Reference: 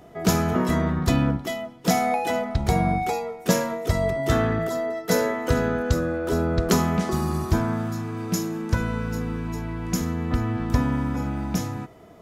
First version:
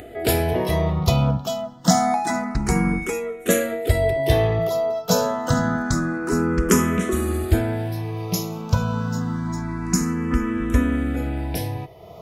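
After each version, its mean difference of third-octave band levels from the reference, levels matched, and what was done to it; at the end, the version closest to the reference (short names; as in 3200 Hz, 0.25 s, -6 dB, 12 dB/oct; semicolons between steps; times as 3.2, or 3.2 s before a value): 4.0 dB: dynamic EQ 9000 Hz, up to +5 dB, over -46 dBFS, Q 1.2; upward compressor, threshold -36 dBFS; endless phaser +0.27 Hz; gain +5.5 dB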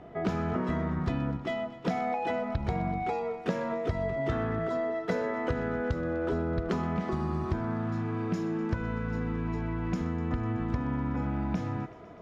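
5.5 dB: LPF 2600 Hz 12 dB/oct; compressor, threshold -27 dBFS, peak gain reduction 12 dB; on a send: thinning echo 0.125 s, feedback 82%, level -17 dB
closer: first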